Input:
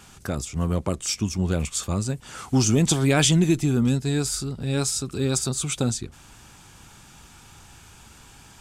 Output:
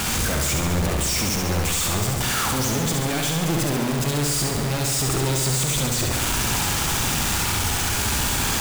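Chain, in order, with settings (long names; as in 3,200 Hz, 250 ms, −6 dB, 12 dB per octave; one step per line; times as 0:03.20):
sign of each sample alone
flutter between parallel walls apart 11.8 metres, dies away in 1.1 s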